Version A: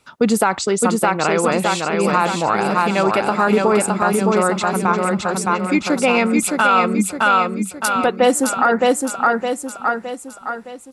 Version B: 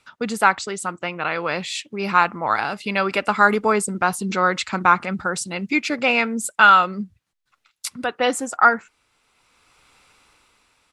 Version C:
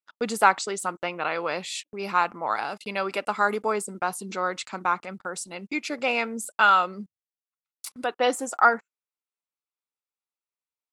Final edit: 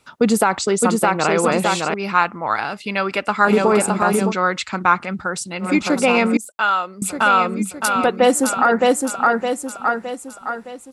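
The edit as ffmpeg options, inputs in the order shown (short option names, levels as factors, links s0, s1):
-filter_complex "[1:a]asplit=2[s0][s1];[0:a]asplit=4[s2][s3][s4][s5];[s2]atrim=end=1.942[s6];[s0]atrim=start=1.938:end=3.452[s7];[s3]atrim=start=3.448:end=4.34[s8];[s1]atrim=start=4.24:end=5.69[s9];[s4]atrim=start=5.59:end=6.372[s10];[2:a]atrim=start=6.368:end=7.022[s11];[s5]atrim=start=7.018[s12];[s6][s7]acrossfade=d=0.004:c1=hsin:c2=hsin[s13];[s13][s8]acrossfade=d=0.004:c1=hsin:c2=hsin[s14];[s14][s9]acrossfade=d=0.1:c1=tri:c2=tri[s15];[s15][s10]acrossfade=d=0.1:c1=tri:c2=tri[s16];[s16][s11]acrossfade=d=0.004:c1=hsin:c2=hsin[s17];[s17][s12]acrossfade=d=0.004:c1=hsin:c2=hsin"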